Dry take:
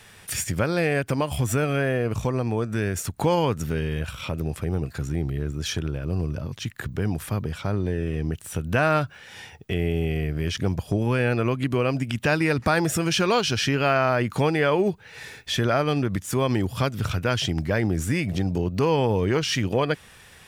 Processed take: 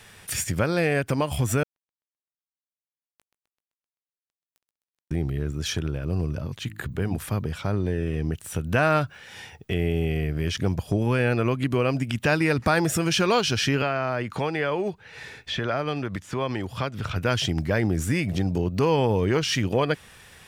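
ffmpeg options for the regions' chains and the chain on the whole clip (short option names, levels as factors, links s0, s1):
-filter_complex "[0:a]asettb=1/sr,asplit=3[s0][s1][s2];[s0]atrim=end=1.634[s3];[s1]atrim=start=1.63:end=5.11,asetpts=PTS-STARTPTS,afade=t=in:d=0.004:c=qsin,afade=t=out:st=3.476:d=0.004:c=qsin,acompressor=threshold=0.0398:ratio=16:attack=3.2:release=140:knee=1:detection=peak,acrusher=bits=2:mix=0:aa=0.5,aecho=1:1:129|258|387|516|645|774:0.251|0.143|0.0816|0.0465|0.0265|0.0151,atrim=end_sample=153468[s4];[s2]atrim=start=5.106[s5];[s3][s4]acrossfade=d=0.004:c1=hsin:c2=qsin[s6];[s6][s5]acrossfade=d=0.004:c1=qsin:c2=hsin,asettb=1/sr,asplit=3[s7][s8][s9];[s7]atrim=end=6.564[s10];[s8]atrim=start=6.56:end=7.18,asetpts=PTS-STARTPTS,afade=t=in:d=0.004:c=qsin,afade=t=out:st=0.616:d=0.004:c=qsin,equalizer=f=5500:w=5.7:g=-10,bandreject=f=52.68:t=h:w=4,bandreject=f=105.36:t=h:w=4,bandreject=f=158.04:t=h:w=4,bandreject=f=210.72:t=h:w=4,bandreject=f=263.4:t=h:w=4,bandreject=f=316.08:t=h:w=4[s11];[s9]atrim=start=7.176[s12];[s10][s11]acrossfade=d=0.004:c1=hsin:c2=qsin[s13];[s13][s12]acrossfade=d=0.004:c1=qsin:c2=hsin,asettb=1/sr,asplit=3[s14][s15][s16];[s14]atrim=end=13.824[s17];[s15]atrim=start=13.82:end=17.16,asetpts=PTS-STARTPTS,afade=t=in:d=0.004:c=qsin,afade=t=out:st=3.336:d=0.004:c=qsin,highshelf=f=9200:g=-12,acrossover=split=500|4800[s18][s19][s20];[s18]acompressor=threshold=0.0355:ratio=4[s21];[s19]acompressor=threshold=0.0562:ratio=4[s22];[s20]acompressor=threshold=0.00224:ratio=4[s23];[s21][s22][s23]amix=inputs=3:normalize=0[s24];[s16]atrim=start=17.156[s25];[s17][s24]acrossfade=d=0.004:c1=hsin:c2=qsin[s26];[s26][s25]acrossfade=d=0.004:c1=qsin:c2=hsin"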